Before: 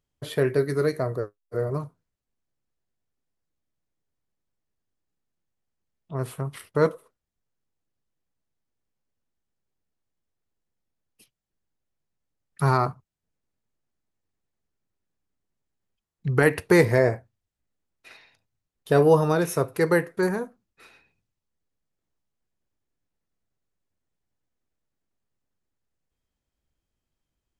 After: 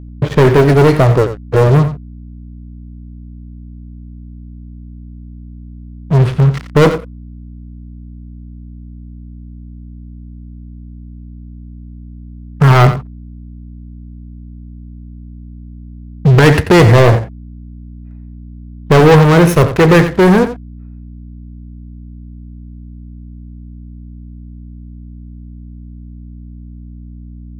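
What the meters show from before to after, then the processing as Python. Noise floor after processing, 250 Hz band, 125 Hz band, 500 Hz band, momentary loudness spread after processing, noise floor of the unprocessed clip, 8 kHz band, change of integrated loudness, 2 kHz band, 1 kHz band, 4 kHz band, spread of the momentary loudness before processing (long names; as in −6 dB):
−32 dBFS, +15.0 dB, +18.5 dB, +11.0 dB, 10 LU, −84 dBFS, +10.5 dB, +13.5 dB, +11.5 dB, +13.5 dB, +17.5 dB, 15 LU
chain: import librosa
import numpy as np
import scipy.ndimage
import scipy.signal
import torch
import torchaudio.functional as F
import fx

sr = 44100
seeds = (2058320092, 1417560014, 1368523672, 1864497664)

p1 = fx.env_lowpass(x, sr, base_hz=1000.0, full_db=-21.0)
p2 = fx.bass_treble(p1, sr, bass_db=6, treble_db=-11)
p3 = fx.leveller(p2, sr, passes=5)
p4 = fx.add_hum(p3, sr, base_hz=60, snr_db=16)
p5 = p4 + fx.echo_single(p4, sr, ms=88, db=-11.5, dry=0)
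y = p5 * librosa.db_to_amplitude(1.5)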